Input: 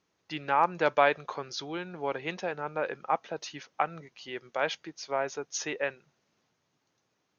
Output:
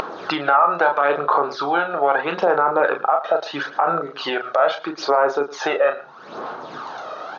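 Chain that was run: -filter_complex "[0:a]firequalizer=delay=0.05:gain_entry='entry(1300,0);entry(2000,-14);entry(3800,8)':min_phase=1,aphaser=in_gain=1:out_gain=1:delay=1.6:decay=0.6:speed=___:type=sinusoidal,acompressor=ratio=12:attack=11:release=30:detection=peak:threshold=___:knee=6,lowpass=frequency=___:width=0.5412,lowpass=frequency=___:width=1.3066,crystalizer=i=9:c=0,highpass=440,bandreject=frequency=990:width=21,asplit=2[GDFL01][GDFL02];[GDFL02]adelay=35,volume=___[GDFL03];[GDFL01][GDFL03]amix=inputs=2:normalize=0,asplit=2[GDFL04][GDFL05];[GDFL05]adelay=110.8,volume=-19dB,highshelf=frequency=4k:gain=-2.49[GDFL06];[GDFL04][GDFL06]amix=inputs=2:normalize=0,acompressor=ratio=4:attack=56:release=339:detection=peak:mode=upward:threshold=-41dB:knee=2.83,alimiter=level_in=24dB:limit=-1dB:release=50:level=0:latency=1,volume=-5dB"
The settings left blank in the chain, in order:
0.77, -35dB, 1.6k, 1.6k, -6.5dB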